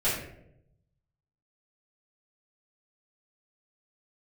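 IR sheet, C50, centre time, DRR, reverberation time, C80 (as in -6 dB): 3.0 dB, 49 ms, -13.0 dB, 0.80 s, 6.5 dB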